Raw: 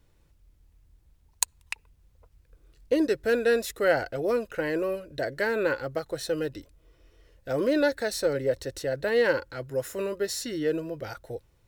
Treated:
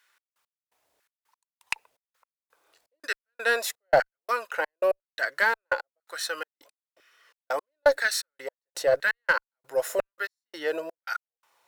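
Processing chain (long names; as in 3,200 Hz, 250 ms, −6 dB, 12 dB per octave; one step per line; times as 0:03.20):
gate pattern "xx..x...xx" 168 BPM −60 dB
auto-filter high-pass saw down 1 Hz 580–1,600 Hz
in parallel at −3.5 dB: asymmetric clip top −23.5 dBFS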